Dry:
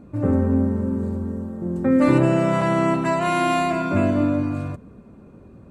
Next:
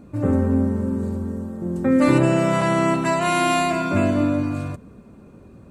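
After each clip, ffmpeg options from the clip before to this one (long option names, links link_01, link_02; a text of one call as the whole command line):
ffmpeg -i in.wav -af "highshelf=frequency=3000:gain=8" out.wav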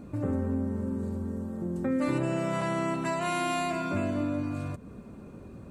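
ffmpeg -i in.wav -af "acompressor=threshold=-35dB:ratio=2" out.wav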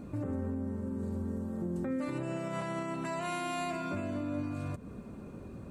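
ffmpeg -i in.wav -af "alimiter=level_in=3dB:limit=-24dB:level=0:latency=1:release=327,volume=-3dB" out.wav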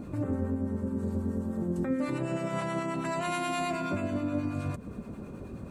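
ffmpeg -i in.wav -filter_complex "[0:a]acrossover=split=830[link_01][link_02];[link_01]aeval=exprs='val(0)*(1-0.5/2+0.5/2*cos(2*PI*9.4*n/s))':channel_layout=same[link_03];[link_02]aeval=exprs='val(0)*(1-0.5/2-0.5/2*cos(2*PI*9.4*n/s))':channel_layout=same[link_04];[link_03][link_04]amix=inputs=2:normalize=0,volume=6.5dB" out.wav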